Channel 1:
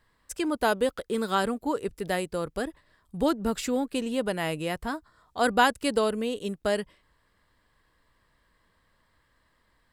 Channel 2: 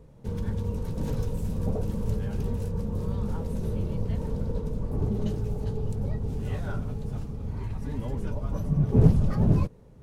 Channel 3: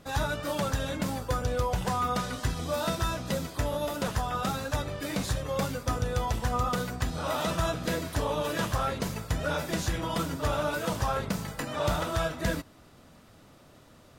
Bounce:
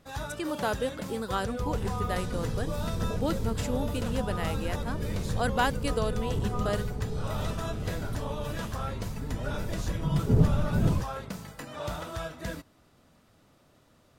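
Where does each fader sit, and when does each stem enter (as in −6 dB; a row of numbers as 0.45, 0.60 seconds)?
−5.5, −3.5, −7.0 decibels; 0.00, 1.35, 0.00 seconds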